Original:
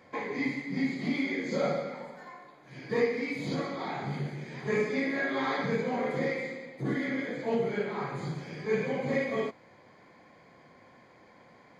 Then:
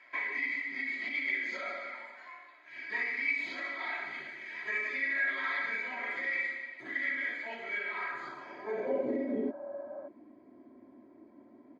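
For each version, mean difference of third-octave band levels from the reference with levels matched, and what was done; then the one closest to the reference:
9.0 dB: healed spectral selection 0:09.13–0:10.05, 550–1,700 Hz before
comb filter 3.1 ms, depth 92%
brickwall limiter −22.5 dBFS, peak gain reduction 7.5 dB
band-pass filter sweep 2,100 Hz → 280 Hz, 0:08.03–0:09.37
level +5.5 dB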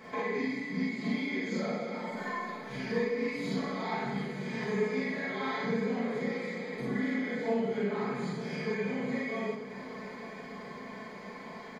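5.5 dB: downward compressor 4 to 1, threshold −45 dBFS, peak gain reduction 19.5 dB
comb filter 4.6 ms, depth 68%
echo machine with several playback heads 302 ms, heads all three, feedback 62%, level −19 dB
four-comb reverb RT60 0.4 s, combs from 31 ms, DRR −3.5 dB
level +5 dB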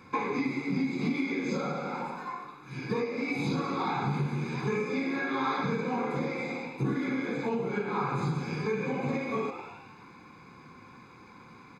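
4.0 dB: on a send: echo with shifted repeats 105 ms, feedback 57%, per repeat +89 Hz, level −14.5 dB
on the sum: downward compressor 6 to 1, threshold −34 dBFS, peak gain reduction 12.5 dB
comb filter 0.8 ms, depth 98%
dynamic equaliser 670 Hz, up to +8 dB, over −54 dBFS, Q 1.3
level +3 dB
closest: third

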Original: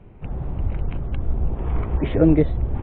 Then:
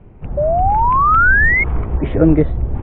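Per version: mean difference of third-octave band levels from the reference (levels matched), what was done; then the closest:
4.5 dB: high-frequency loss of the air 270 metres
sound drawn into the spectrogram rise, 0:00.37–0:01.64, 570–2,200 Hz −20 dBFS
dynamic equaliser 1,400 Hz, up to +5 dB, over −36 dBFS, Q 1.6
level +4 dB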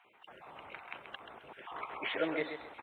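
11.0 dB: time-frequency cells dropped at random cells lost 20%
high-pass filter 1,300 Hz 12 dB per octave
on a send: repeating echo 132 ms, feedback 29%, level −8.5 dB
on the sum: level +2.5 dB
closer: first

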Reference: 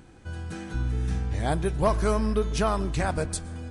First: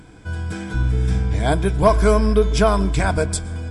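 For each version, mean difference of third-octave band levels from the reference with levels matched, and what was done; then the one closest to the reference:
2.0 dB: EQ curve with evenly spaced ripples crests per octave 1.7, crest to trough 8 dB
level +6.5 dB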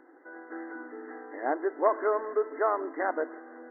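15.5 dB: linear-phase brick-wall band-pass 260–2,100 Hz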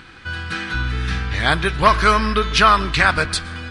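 6.0 dB: flat-topped bell 2,300 Hz +15.5 dB 2.5 octaves
level +4 dB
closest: first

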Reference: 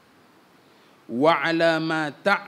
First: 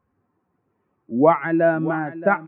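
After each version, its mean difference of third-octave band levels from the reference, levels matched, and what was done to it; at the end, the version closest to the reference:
8.5 dB: spectral dynamics exaggerated over time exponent 1.5
Gaussian smoothing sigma 5.4 samples
single-tap delay 624 ms −14.5 dB
level +6 dB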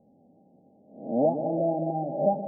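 12.5 dB: peak hold with a rise ahead of every peak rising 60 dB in 0.55 s
Chebyshev low-pass with heavy ripple 820 Hz, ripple 9 dB
on a send: echo with a time of its own for lows and highs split 540 Hz, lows 131 ms, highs 215 ms, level −8 dB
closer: first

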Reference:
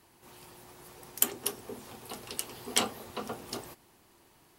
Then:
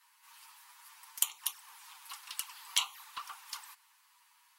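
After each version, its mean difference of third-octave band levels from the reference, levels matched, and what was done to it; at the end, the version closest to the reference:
13.0 dB: elliptic high-pass filter 940 Hz, stop band 40 dB
in parallel at −11 dB: soft clipping −17.5 dBFS, distortion −9 dB
on the sum: flanger swept by the level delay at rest 11.6 ms, full sweep at −30 dBFS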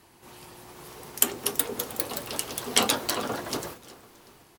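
3.0 dB: high-shelf EQ 11,000 Hz −3.5 dB
repeating echo 370 ms, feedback 44%, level −19 dB
delay with pitch and tempo change per echo 567 ms, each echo +3 semitones, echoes 2
level +5.5 dB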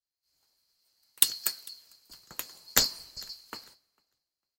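18.0 dB: neighbouring bands swapped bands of 4,000 Hz
echo with shifted repeats 450 ms, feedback 38%, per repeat −49 Hz, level −17.5 dB
multiband upward and downward expander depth 100%
level −4.5 dB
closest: second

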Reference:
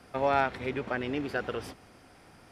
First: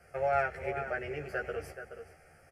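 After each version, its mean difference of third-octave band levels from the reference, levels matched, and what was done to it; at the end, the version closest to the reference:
5.0 dB: phaser with its sweep stopped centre 1,000 Hz, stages 6
double-tracking delay 13 ms −2 dB
slap from a distant wall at 73 metres, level −9 dB
level −3.5 dB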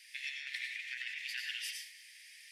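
24.0 dB: Butterworth high-pass 1,800 Hz 96 dB per octave
compressor whose output falls as the input rises −45 dBFS, ratio −0.5
dense smooth reverb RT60 0.58 s, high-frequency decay 0.75×, pre-delay 80 ms, DRR 1.5 dB
level +3.5 dB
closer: first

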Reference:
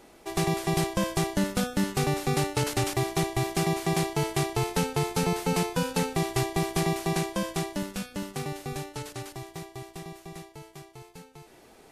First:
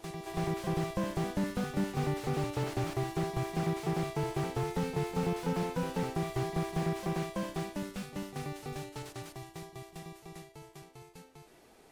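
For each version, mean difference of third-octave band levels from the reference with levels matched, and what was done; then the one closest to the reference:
3.5 dB: backwards echo 331 ms −10 dB
slew-rate limiting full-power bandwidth 45 Hz
level −5.5 dB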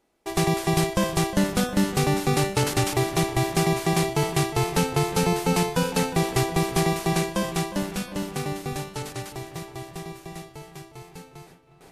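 2.0 dB: noise gate with hold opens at −42 dBFS
delay with a low-pass on its return 359 ms, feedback 58%, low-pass 3,000 Hz, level −13.5 dB
level +4 dB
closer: second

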